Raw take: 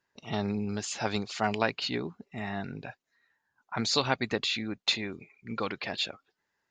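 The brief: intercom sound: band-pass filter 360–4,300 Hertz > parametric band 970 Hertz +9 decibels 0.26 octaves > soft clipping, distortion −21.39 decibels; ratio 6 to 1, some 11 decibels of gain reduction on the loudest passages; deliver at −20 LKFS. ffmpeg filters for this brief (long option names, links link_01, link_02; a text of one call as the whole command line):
ffmpeg -i in.wav -af "acompressor=threshold=-33dB:ratio=6,highpass=360,lowpass=4300,equalizer=frequency=970:width_type=o:width=0.26:gain=9,asoftclip=threshold=-22.5dB,volume=20dB" out.wav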